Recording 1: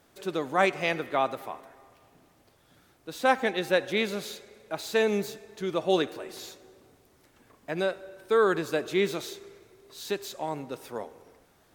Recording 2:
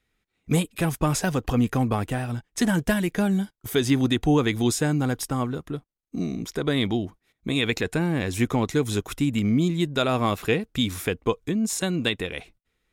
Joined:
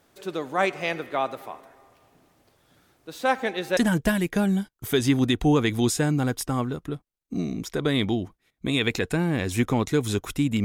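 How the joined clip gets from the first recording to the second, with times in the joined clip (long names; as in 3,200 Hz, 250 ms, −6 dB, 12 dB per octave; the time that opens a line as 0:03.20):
recording 1
0:03.77: continue with recording 2 from 0:02.59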